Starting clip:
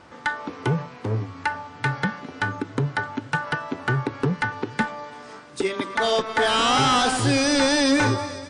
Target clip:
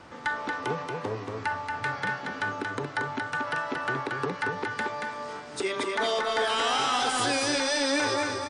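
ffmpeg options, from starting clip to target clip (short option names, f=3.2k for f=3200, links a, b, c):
-filter_complex "[0:a]acrossover=split=340|1600[a][b][c];[a]acompressor=threshold=-41dB:ratio=5[d];[d][b][c]amix=inputs=3:normalize=0,alimiter=limit=-19dB:level=0:latency=1:release=58,aecho=1:1:230:0.631"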